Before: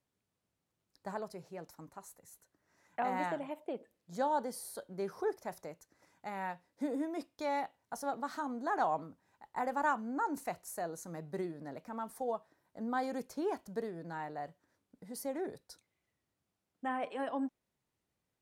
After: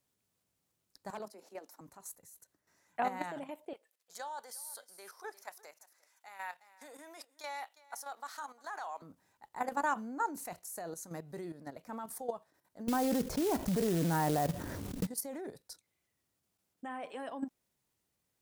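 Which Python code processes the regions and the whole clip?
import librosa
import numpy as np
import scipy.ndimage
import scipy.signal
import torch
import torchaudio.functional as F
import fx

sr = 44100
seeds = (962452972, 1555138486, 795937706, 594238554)

y = fx.chain(x, sr, fx.cheby_ripple_highpass(hz=200.0, ripple_db=3),
    fx.clip_hard(threshold_db=-34.5),
    fx.band_squash(depth_pct=40), at=(1.1, 1.81))
y = fx.chain(y, sr, fx.highpass(hz=970.0, slope=12),
    fx.echo_single(ms=351, db=-18.0), at=(3.73, 9.02))
y = fx.chain(y, sr, fx.tilt_eq(slope=-3.5),
    fx.quant_float(bits=2),
    fx.env_flatten(amount_pct=70), at=(12.88, 15.07))
y = fx.level_steps(y, sr, step_db=11)
y = fx.high_shelf(y, sr, hz=4700.0, db=9.5)
y = y * 10.0 ** (2.5 / 20.0)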